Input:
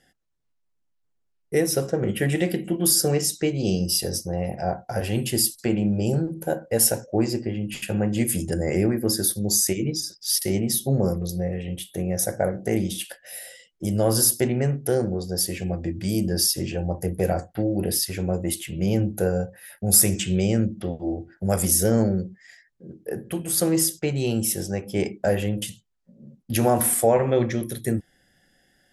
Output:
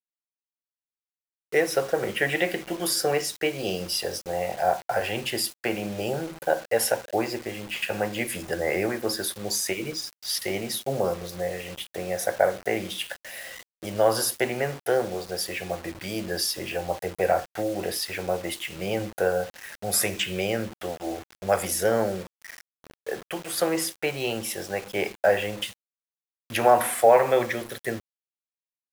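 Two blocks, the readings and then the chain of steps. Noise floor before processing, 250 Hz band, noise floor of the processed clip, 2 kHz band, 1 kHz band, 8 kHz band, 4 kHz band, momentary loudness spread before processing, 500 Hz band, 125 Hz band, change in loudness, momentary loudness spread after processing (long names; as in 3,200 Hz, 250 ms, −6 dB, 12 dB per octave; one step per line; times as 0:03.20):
−71 dBFS, −8.5 dB, below −85 dBFS, +6.0 dB, +5.5 dB, −8.0 dB, −1.0 dB, 10 LU, +0.5 dB, −12.5 dB, −3.5 dB, 10 LU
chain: three-way crossover with the lows and the highs turned down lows −20 dB, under 530 Hz, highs −16 dB, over 3,500 Hz
bit-depth reduction 8 bits, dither none
level +7 dB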